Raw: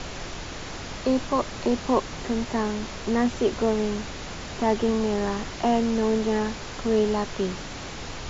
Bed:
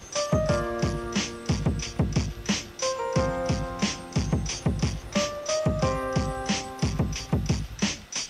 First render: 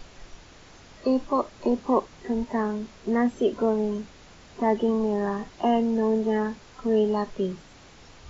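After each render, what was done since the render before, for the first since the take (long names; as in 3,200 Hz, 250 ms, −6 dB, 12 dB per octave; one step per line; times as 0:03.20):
noise reduction from a noise print 14 dB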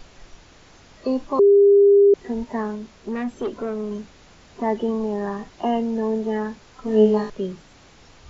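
0:01.39–0:02.14: beep over 402 Hz −9.5 dBFS
0:02.75–0:03.91: tube saturation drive 20 dB, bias 0.3
0:06.84–0:07.30: flutter between parallel walls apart 3.2 metres, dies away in 0.38 s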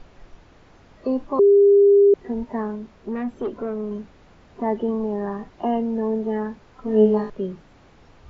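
low-pass filter 1,400 Hz 6 dB per octave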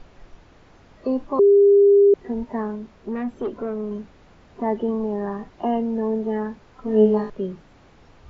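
no processing that can be heard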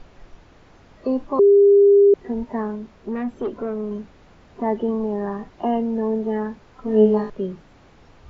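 level +1 dB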